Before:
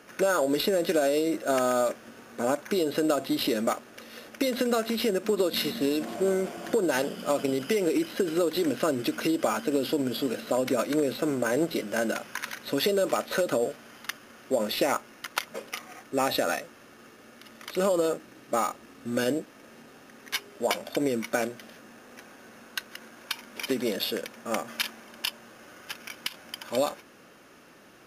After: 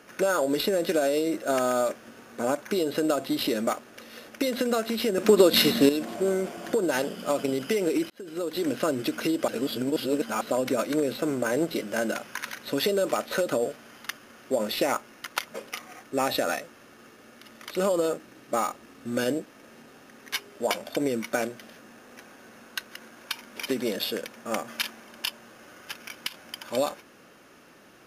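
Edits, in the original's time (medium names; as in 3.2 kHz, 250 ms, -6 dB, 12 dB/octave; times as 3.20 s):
5.18–5.89 s: gain +8 dB
8.10–8.72 s: fade in
9.48–10.41 s: reverse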